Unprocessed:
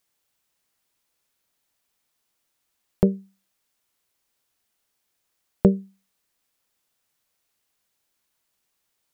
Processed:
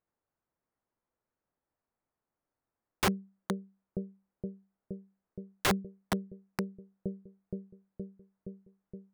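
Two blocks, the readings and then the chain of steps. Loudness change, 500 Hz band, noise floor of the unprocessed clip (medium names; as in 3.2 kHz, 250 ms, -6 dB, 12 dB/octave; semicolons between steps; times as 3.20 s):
-13.5 dB, -9.0 dB, -76 dBFS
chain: Gaussian low-pass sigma 5.8 samples; bucket-brigade echo 469 ms, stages 2048, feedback 75%, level -11.5 dB; integer overflow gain 17.5 dB; trim -3 dB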